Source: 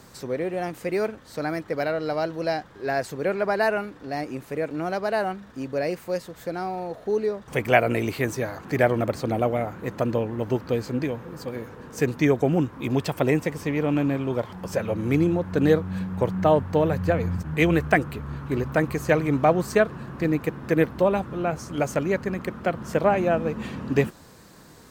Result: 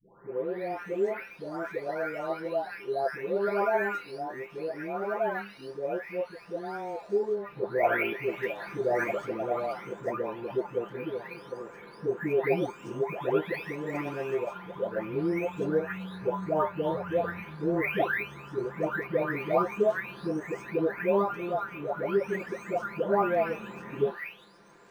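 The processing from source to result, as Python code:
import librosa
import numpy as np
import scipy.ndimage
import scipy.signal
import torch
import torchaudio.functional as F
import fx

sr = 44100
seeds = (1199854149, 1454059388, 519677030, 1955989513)

y = fx.spec_delay(x, sr, highs='late', ms=901)
y = fx.bass_treble(y, sr, bass_db=-13, treble_db=-12)
y = fx.comb_fb(y, sr, f0_hz=200.0, decay_s=0.19, harmonics='all', damping=0.0, mix_pct=70)
y = np.interp(np.arange(len(y)), np.arange(len(y))[::3], y[::3])
y = F.gain(torch.from_numpy(y), 6.5).numpy()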